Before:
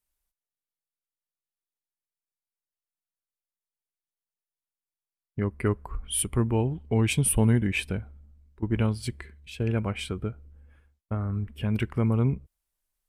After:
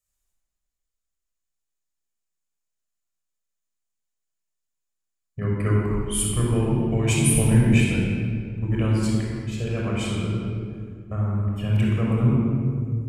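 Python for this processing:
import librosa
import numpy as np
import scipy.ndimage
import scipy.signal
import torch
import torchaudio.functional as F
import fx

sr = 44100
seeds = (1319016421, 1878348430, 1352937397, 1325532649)

y = fx.peak_eq(x, sr, hz=7000.0, db=12.5, octaves=0.39)
y = fx.room_shoebox(y, sr, seeds[0], volume_m3=4000.0, walls='mixed', distance_m=6.0)
y = y * librosa.db_to_amplitude(-4.5)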